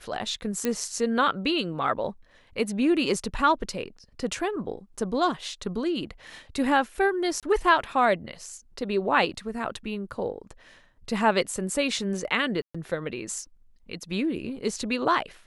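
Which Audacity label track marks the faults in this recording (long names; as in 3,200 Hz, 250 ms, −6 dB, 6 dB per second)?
0.650000	0.650000	click −12 dBFS
7.400000	7.430000	drop-out 27 ms
12.620000	12.740000	drop-out 125 ms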